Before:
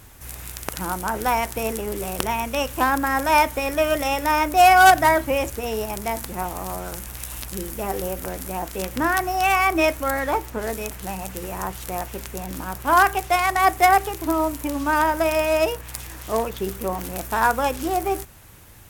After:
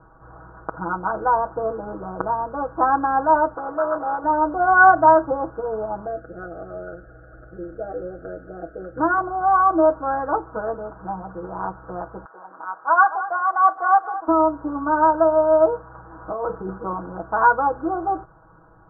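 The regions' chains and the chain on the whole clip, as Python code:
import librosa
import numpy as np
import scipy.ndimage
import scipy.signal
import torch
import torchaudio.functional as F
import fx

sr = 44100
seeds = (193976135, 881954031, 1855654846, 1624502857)

y = fx.chain(x, sr, fx.low_shelf(hz=91.0, db=-11.5),
    fx.transformer_sat(knee_hz=2400.0), at=(3.54, 4.24))
y = fx.chain(y, sr, fx.cheby1_bandstop(low_hz=630.0, high_hz=1500.0, order=2),
    fx.peak_eq(hz=200.0, db=-10.5, octaves=0.31), at=(6.06, 8.98))
y = fx.chain(y, sr, fx.highpass(hz=780.0, slope=12),
    fx.echo_crushed(ms=219, feedback_pct=35, bits=6, wet_db=-13.5), at=(12.25, 14.28))
y = fx.chain(y, sr, fx.over_compress(threshold_db=-27.0, ratio=-1.0),
    fx.doubler(ms=37.0, db=-11), at=(16.21, 16.78))
y = scipy.signal.sosfilt(scipy.signal.butter(16, 1500.0, 'lowpass', fs=sr, output='sos'), y)
y = fx.low_shelf(y, sr, hz=350.0, db=-9.5)
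y = y + 0.96 * np.pad(y, (int(6.2 * sr / 1000.0), 0))[:len(y)]
y = y * librosa.db_to_amplitude(2.0)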